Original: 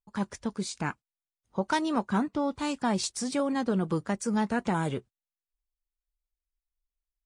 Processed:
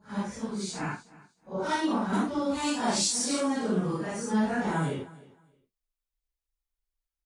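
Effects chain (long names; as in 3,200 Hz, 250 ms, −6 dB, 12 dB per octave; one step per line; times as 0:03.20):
random phases in long frames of 200 ms
0:02.13–0:03.48: high-shelf EQ 2,900 Hz +9 dB
on a send: repeating echo 310 ms, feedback 21%, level −20.5 dB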